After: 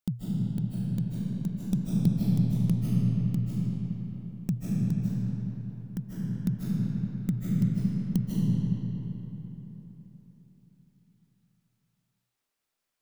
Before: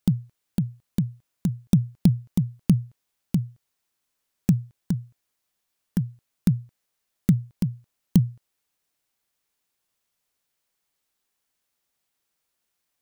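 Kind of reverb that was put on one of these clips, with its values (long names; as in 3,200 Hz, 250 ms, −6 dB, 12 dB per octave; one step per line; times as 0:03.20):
comb and all-pass reverb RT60 4 s, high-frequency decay 0.6×, pre-delay 115 ms, DRR −7 dB
level −10 dB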